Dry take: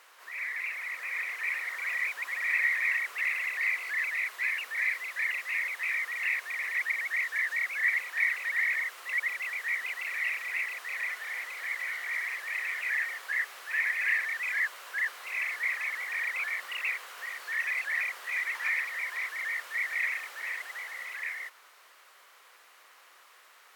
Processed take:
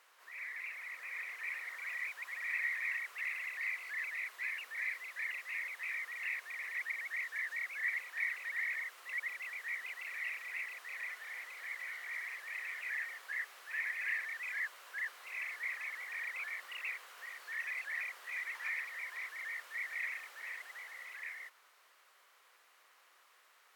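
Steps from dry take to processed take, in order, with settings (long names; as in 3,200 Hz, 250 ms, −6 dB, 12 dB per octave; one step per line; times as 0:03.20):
0:01.78–0:03.91: low-shelf EQ 260 Hz −8.5 dB
level −9 dB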